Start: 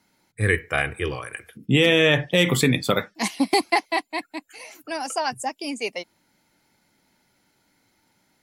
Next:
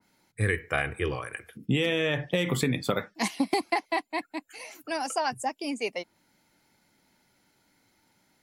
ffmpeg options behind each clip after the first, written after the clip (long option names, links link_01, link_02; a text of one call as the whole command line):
ffmpeg -i in.wav -af "acompressor=threshold=-20dB:ratio=6,adynamicequalizer=threshold=0.00794:dfrequency=2300:dqfactor=0.7:tfrequency=2300:tqfactor=0.7:attack=5:release=100:ratio=0.375:range=2.5:mode=cutabove:tftype=highshelf,volume=-1.5dB" out.wav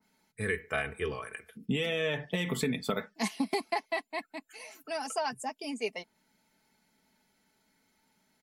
ffmpeg -i in.wav -af "aecho=1:1:4.6:0.58,volume=-5.5dB" out.wav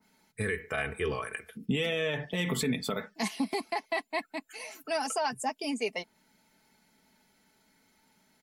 ffmpeg -i in.wav -af "alimiter=level_in=1dB:limit=-24dB:level=0:latency=1:release=82,volume=-1dB,volume=4.5dB" out.wav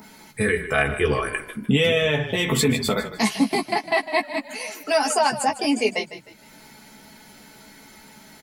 ffmpeg -i in.wav -filter_complex "[0:a]acompressor=mode=upward:threshold=-47dB:ratio=2.5,asplit=2[link_01][link_02];[link_02]adelay=14,volume=-4.5dB[link_03];[link_01][link_03]amix=inputs=2:normalize=0,asplit=4[link_04][link_05][link_06][link_07];[link_05]adelay=153,afreqshift=-33,volume=-13dB[link_08];[link_06]adelay=306,afreqshift=-66,volume=-22.4dB[link_09];[link_07]adelay=459,afreqshift=-99,volume=-31.7dB[link_10];[link_04][link_08][link_09][link_10]amix=inputs=4:normalize=0,volume=9dB" out.wav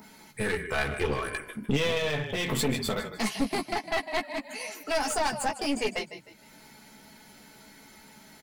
ffmpeg -i in.wav -af "aeval=exprs='clip(val(0),-1,0.0531)':channel_layout=same,volume=-5dB" out.wav